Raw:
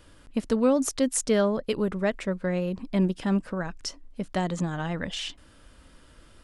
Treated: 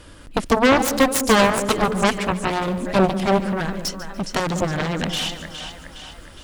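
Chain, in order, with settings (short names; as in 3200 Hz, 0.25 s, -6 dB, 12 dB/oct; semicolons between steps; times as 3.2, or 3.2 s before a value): split-band echo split 630 Hz, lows 0.198 s, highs 0.413 s, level -11.5 dB; added harmonics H 7 -8 dB, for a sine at -11.5 dBFS; lo-fi delay 0.145 s, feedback 35%, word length 8-bit, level -14.5 dB; gain +5.5 dB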